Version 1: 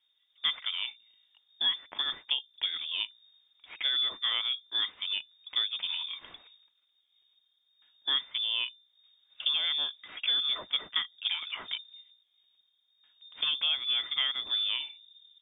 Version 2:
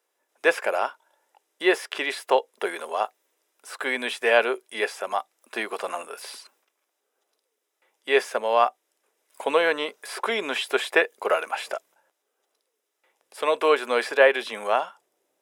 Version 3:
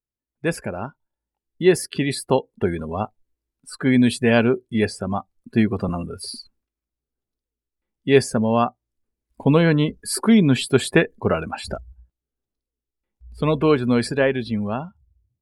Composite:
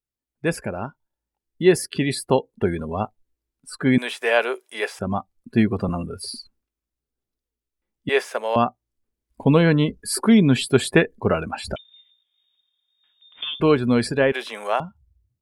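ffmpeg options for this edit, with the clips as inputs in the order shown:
-filter_complex "[1:a]asplit=3[a][b][c];[2:a]asplit=5[d][e][f][g][h];[d]atrim=end=3.982[i];[a]atrim=start=3.978:end=4.992[j];[e]atrim=start=4.988:end=8.092[k];[b]atrim=start=8.088:end=8.562[l];[f]atrim=start=8.558:end=11.762[m];[0:a]atrim=start=11.758:end=13.602[n];[g]atrim=start=13.598:end=14.322[o];[c]atrim=start=14.318:end=14.802[p];[h]atrim=start=14.798[q];[i][j]acrossfade=d=0.004:c1=hsin:c2=hsin[r];[r][k]acrossfade=d=0.004:c1=hsin:c2=hsin[s];[s][l]acrossfade=d=0.004:c1=hsin:c2=hsin[t];[t][m]acrossfade=d=0.004:c1=hsin:c2=hsin[u];[u][n]acrossfade=d=0.004:c1=hsin:c2=hsin[v];[v][o]acrossfade=d=0.004:c1=hsin:c2=hsin[w];[w][p]acrossfade=d=0.004:c1=hsin:c2=hsin[x];[x][q]acrossfade=d=0.004:c1=hsin:c2=hsin"

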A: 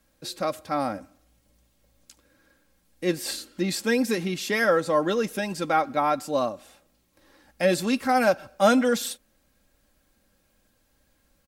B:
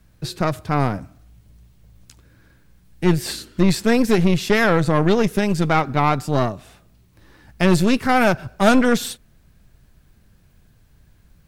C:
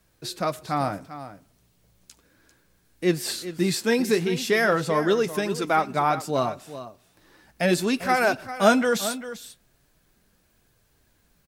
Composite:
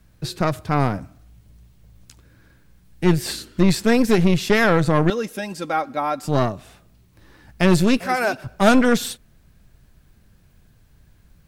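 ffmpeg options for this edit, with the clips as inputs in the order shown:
-filter_complex "[1:a]asplit=3[a][b][c];[a]atrim=end=5.102[d];[0:a]atrim=start=5.098:end=6.232[e];[b]atrim=start=6.228:end=8.002[f];[2:a]atrim=start=7.998:end=8.442[g];[c]atrim=start=8.438[h];[d][e]acrossfade=d=0.004:c1=hsin:c2=hsin[i];[i][f]acrossfade=d=0.004:c1=hsin:c2=hsin[j];[j][g]acrossfade=d=0.004:c1=hsin:c2=hsin[k];[k][h]acrossfade=d=0.004:c1=hsin:c2=hsin"

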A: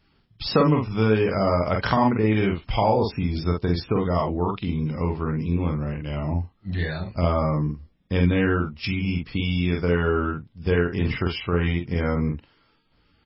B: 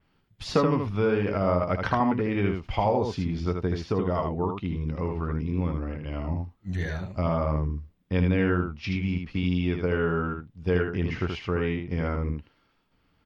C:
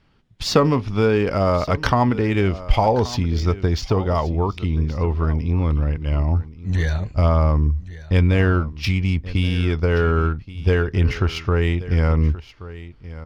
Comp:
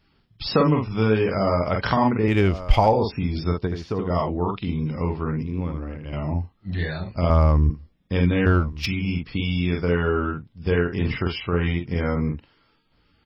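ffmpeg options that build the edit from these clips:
-filter_complex "[2:a]asplit=3[a][b][c];[1:a]asplit=2[d][e];[0:a]asplit=6[f][g][h][i][j][k];[f]atrim=end=2.282[l];[a]atrim=start=2.278:end=2.932[m];[g]atrim=start=2.928:end=3.672[n];[d]atrim=start=3.668:end=4.102[o];[h]atrim=start=4.098:end=5.432[p];[e]atrim=start=5.428:end=6.132[q];[i]atrim=start=6.128:end=7.302[r];[b]atrim=start=7.298:end=7.702[s];[j]atrim=start=7.698:end=8.462[t];[c]atrim=start=8.458:end=8.862[u];[k]atrim=start=8.858[v];[l][m]acrossfade=d=0.004:c1=hsin:c2=hsin[w];[w][n]acrossfade=d=0.004:c1=hsin:c2=hsin[x];[x][o]acrossfade=d=0.004:c1=hsin:c2=hsin[y];[y][p]acrossfade=d=0.004:c1=hsin:c2=hsin[z];[z][q]acrossfade=d=0.004:c1=hsin:c2=hsin[aa];[aa][r]acrossfade=d=0.004:c1=hsin:c2=hsin[ab];[ab][s]acrossfade=d=0.004:c1=hsin:c2=hsin[ac];[ac][t]acrossfade=d=0.004:c1=hsin:c2=hsin[ad];[ad][u]acrossfade=d=0.004:c1=hsin:c2=hsin[ae];[ae][v]acrossfade=d=0.004:c1=hsin:c2=hsin"

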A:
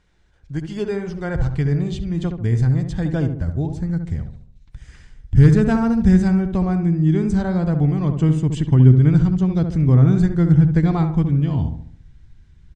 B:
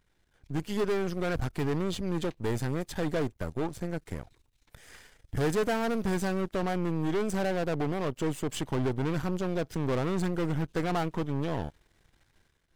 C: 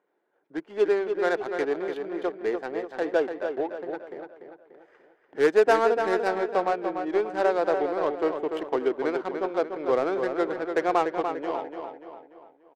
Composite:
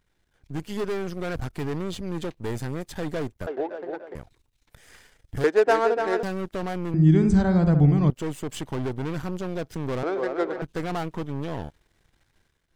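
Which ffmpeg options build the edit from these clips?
-filter_complex "[2:a]asplit=3[a][b][c];[1:a]asplit=5[d][e][f][g][h];[d]atrim=end=3.472[i];[a]atrim=start=3.468:end=4.152[j];[e]atrim=start=4.148:end=5.442[k];[b]atrim=start=5.438:end=6.232[l];[f]atrim=start=6.228:end=6.942[m];[0:a]atrim=start=6.938:end=8.102[n];[g]atrim=start=8.098:end=10.032[o];[c]atrim=start=10.028:end=10.622[p];[h]atrim=start=10.618[q];[i][j]acrossfade=d=0.004:c1=hsin:c2=hsin[r];[r][k]acrossfade=d=0.004:c1=hsin:c2=hsin[s];[s][l]acrossfade=d=0.004:c1=hsin:c2=hsin[t];[t][m]acrossfade=d=0.004:c1=hsin:c2=hsin[u];[u][n]acrossfade=d=0.004:c1=hsin:c2=hsin[v];[v][o]acrossfade=d=0.004:c1=hsin:c2=hsin[w];[w][p]acrossfade=d=0.004:c1=hsin:c2=hsin[x];[x][q]acrossfade=d=0.004:c1=hsin:c2=hsin"

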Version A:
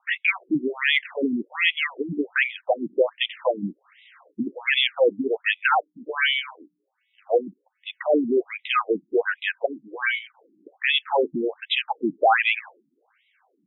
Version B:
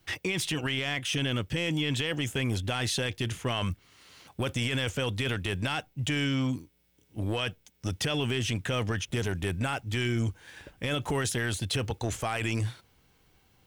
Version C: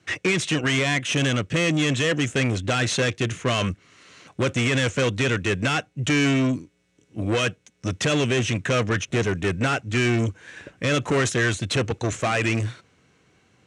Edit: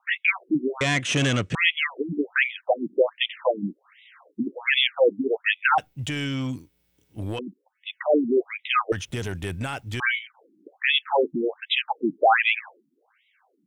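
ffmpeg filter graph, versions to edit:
-filter_complex "[1:a]asplit=2[a][b];[0:a]asplit=4[c][d][e][f];[c]atrim=end=0.812[g];[2:a]atrim=start=0.808:end=1.552[h];[d]atrim=start=1.548:end=5.782[i];[a]atrim=start=5.778:end=7.392[j];[e]atrim=start=7.388:end=8.922[k];[b]atrim=start=8.918:end=10.002[l];[f]atrim=start=9.998[m];[g][h]acrossfade=d=0.004:c1=hsin:c2=hsin[n];[n][i]acrossfade=d=0.004:c1=hsin:c2=hsin[o];[o][j]acrossfade=d=0.004:c1=hsin:c2=hsin[p];[p][k]acrossfade=d=0.004:c1=hsin:c2=hsin[q];[q][l]acrossfade=d=0.004:c1=hsin:c2=hsin[r];[r][m]acrossfade=d=0.004:c1=hsin:c2=hsin"

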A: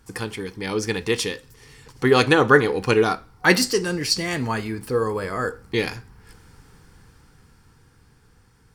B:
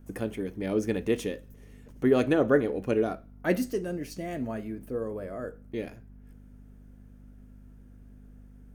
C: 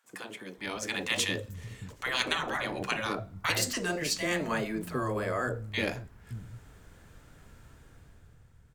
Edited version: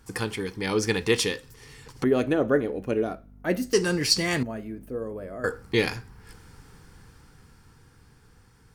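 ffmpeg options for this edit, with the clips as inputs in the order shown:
-filter_complex "[1:a]asplit=2[a][b];[0:a]asplit=3[c][d][e];[c]atrim=end=2.042[f];[a]atrim=start=2.038:end=3.732[g];[d]atrim=start=3.728:end=4.432[h];[b]atrim=start=4.428:end=5.442[i];[e]atrim=start=5.438[j];[f][g]acrossfade=d=0.004:c1=hsin:c2=hsin[k];[k][h]acrossfade=d=0.004:c1=hsin:c2=hsin[l];[l][i]acrossfade=d=0.004:c1=hsin:c2=hsin[m];[m][j]acrossfade=d=0.004:c1=hsin:c2=hsin"

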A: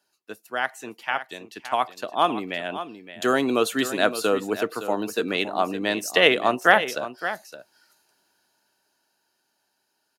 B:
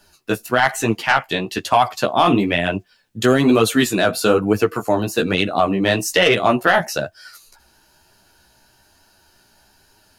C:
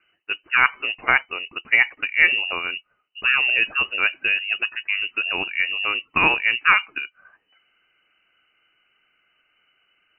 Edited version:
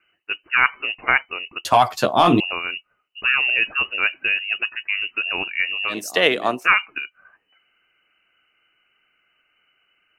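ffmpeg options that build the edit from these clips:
-filter_complex "[2:a]asplit=3[a][b][c];[a]atrim=end=1.652[d];[1:a]atrim=start=1.648:end=2.402[e];[b]atrim=start=2.398:end=5.97[f];[0:a]atrim=start=5.87:end=6.69[g];[c]atrim=start=6.59[h];[d][e]acrossfade=d=0.004:c1=hsin:c2=hsin[i];[i][f]acrossfade=d=0.004:c1=hsin:c2=hsin[j];[j][g]acrossfade=d=0.1:c1=tri:c2=tri[k];[k][h]acrossfade=d=0.1:c1=tri:c2=tri"

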